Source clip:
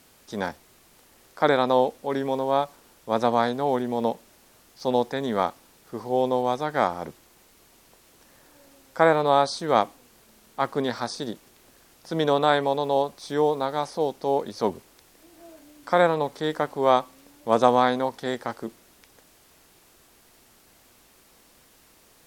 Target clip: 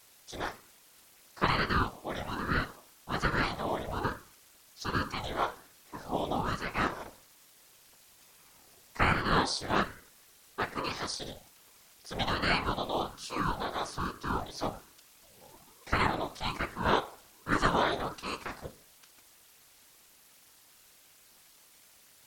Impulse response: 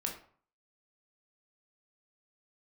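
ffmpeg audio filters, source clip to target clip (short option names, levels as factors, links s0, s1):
-filter_complex "[0:a]tiltshelf=f=1200:g=-5.5,asplit=2[s0][s1];[1:a]atrim=start_sample=2205,afade=t=out:st=0.42:d=0.01,atrim=end_sample=18963[s2];[s1][s2]afir=irnorm=-1:irlink=0,volume=0.473[s3];[s0][s3]amix=inputs=2:normalize=0,afftfilt=real='hypot(re,im)*cos(2*PI*random(0))':imag='hypot(re,im)*sin(2*PI*random(1))':win_size=512:overlap=0.75,aeval=exprs='val(0)*sin(2*PI*450*n/s+450*0.7/1.2*sin(2*PI*1.2*n/s))':c=same"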